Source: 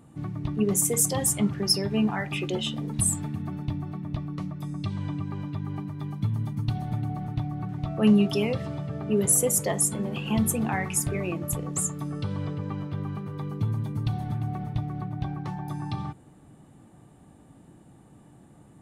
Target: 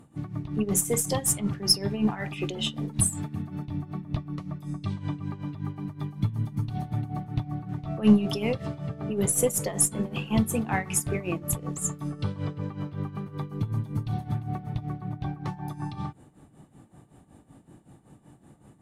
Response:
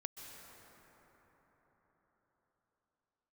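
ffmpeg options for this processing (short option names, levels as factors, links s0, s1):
-filter_complex "[0:a]aeval=exprs='0.376*(cos(1*acos(clip(val(0)/0.376,-1,1)))-cos(1*PI/2))+0.00944*(cos(6*acos(clip(val(0)/0.376,-1,1)))-cos(6*PI/2))':c=same,tremolo=f=5.3:d=0.77[s0];[1:a]atrim=start_sample=2205,atrim=end_sample=3528,asetrate=29988,aresample=44100[s1];[s0][s1]afir=irnorm=-1:irlink=0,volume=1.78"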